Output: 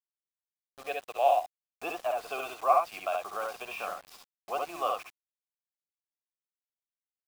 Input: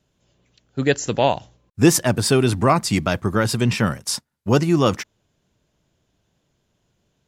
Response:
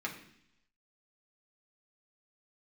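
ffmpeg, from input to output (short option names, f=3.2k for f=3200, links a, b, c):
-filter_complex "[0:a]deesser=0.4,asplit=3[a][b][c];[a]bandpass=f=730:t=q:w=8,volume=0dB[d];[b]bandpass=f=1.09k:t=q:w=8,volume=-6dB[e];[c]bandpass=f=2.44k:t=q:w=8,volume=-9dB[f];[d][e][f]amix=inputs=3:normalize=0,acrossover=split=450 6500:gain=0.1 1 0.224[g][h][i];[g][h][i]amix=inputs=3:normalize=0,bandreject=f=60:t=h:w=6,bandreject=f=120:t=h:w=6,bandreject=f=180:t=h:w=6,bandreject=f=240:t=h:w=6,bandreject=f=300:t=h:w=6,acrusher=bits=7:mix=0:aa=0.000001,aecho=1:1:58|69:0.299|0.708"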